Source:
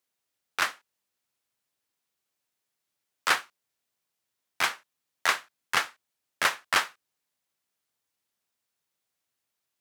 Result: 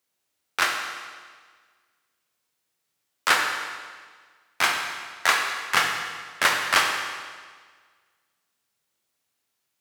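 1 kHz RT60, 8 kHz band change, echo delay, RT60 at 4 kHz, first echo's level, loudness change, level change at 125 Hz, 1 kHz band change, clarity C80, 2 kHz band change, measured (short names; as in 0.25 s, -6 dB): 1.6 s, +5.5 dB, none, 1.5 s, none, +4.5 dB, +6.5 dB, +5.5 dB, 5.0 dB, +6.0 dB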